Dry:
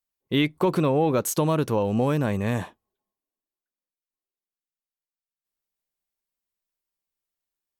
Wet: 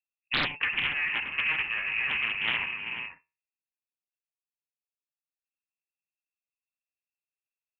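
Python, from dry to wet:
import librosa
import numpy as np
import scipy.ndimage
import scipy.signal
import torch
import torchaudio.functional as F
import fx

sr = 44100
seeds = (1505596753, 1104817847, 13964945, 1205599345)

p1 = fx.lower_of_two(x, sr, delay_ms=1.2)
p2 = fx.env_lowpass(p1, sr, base_hz=310.0, full_db=-23.0)
p3 = fx.freq_invert(p2, sr, carrier_hz=2700)
p4 = fx.comb_fb(p3, sr, f0_hz=79.0, decay_s=0.33, harmonics='all', damping=0.0, mix_pct=30)
p5 = p4 + fx.echo_multitap(p4, sr, ms=(68, 99, 386, 485), db=(-13.0, -14.0, -11.5, -11.0), dry=0)
p6 = fx.rider(p5, sr, range_db=4, speed_s=0.5)
p7 = fx.doppler_dist(p6, sr, depth_ms=0.87)
y = p7 * librosa.db_to_amplitude(-3.0)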